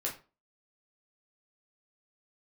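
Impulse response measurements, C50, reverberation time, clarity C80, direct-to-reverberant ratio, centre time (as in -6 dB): 10.0 dB, 0.35 s, 15.5 dB, -3.0 dB, 21 ms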